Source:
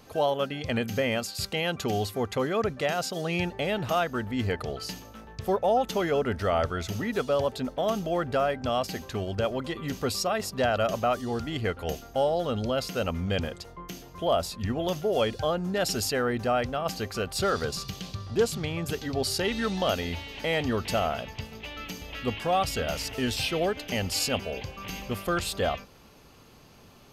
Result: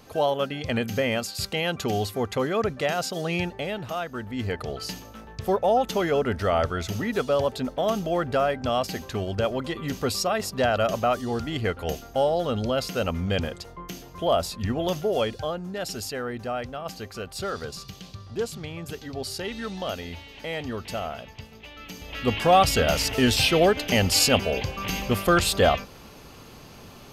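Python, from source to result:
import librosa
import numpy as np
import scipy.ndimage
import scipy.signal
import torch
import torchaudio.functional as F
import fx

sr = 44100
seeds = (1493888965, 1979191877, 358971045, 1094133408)

y = fx.gain(x, sr, db=fx.line((3.33, 2.0), (3.94, -5.0), (4.86, 2.5), (15.01, 2.5), (15.68, -4.5), (21.79, -4.5), (22.41, 8.0)))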